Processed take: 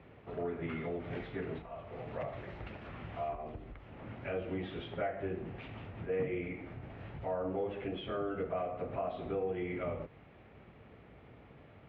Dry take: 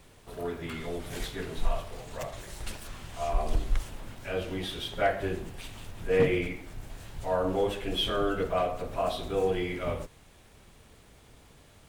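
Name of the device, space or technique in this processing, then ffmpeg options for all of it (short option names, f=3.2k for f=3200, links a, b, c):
bass amplifier: -af "acompressor=threshold=-36dB:ratio=4,highpass=f=60:w=0.5412,highpass=f=60:w=1.3066,equalizer=f=76:t=q:w=4:g=-7,equalizer=f=1k:t=q:w=4:g=-5,equalizer=f=1.6k:t=q:w=4:g=-5,lowpass=f=2.3k:w=0.5412,lowpass=f=2.3k:w=1.3066,volume=2.5dB"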